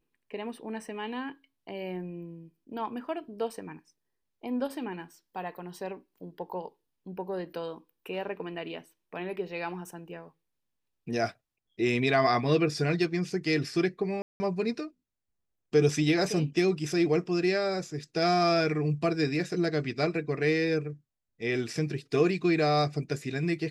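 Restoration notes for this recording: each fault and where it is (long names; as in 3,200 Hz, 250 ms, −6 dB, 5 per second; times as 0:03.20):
0:14.22–0:14.40: drop-out 180 ms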